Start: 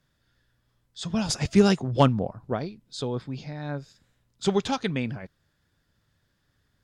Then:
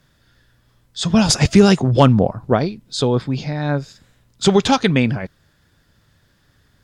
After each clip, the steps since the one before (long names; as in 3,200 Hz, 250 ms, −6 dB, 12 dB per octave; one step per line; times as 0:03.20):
boost into a limiter +13.5 dB
level −1 dB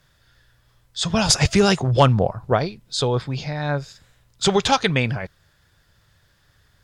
parametric band 250 Hz −10 dB 1.2 octaves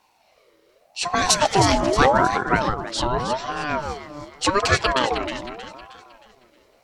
delay that swaps between a low-pass and a high-pass 157 ms, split 1,000 Hz, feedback 65%, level −4.5 dB
ring modulator whose carrier an LFO sweeps 680 Hz, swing 35%, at 0.84 Hz
level +1 dB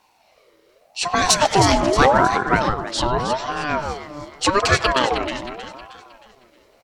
far-end echo of a speakerphone 100 ms, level −16 dB
in parallel at −5.5 dB: hard clipping −9.5 dBFS, distortion −19 dB
on the sum: level −1.5 dB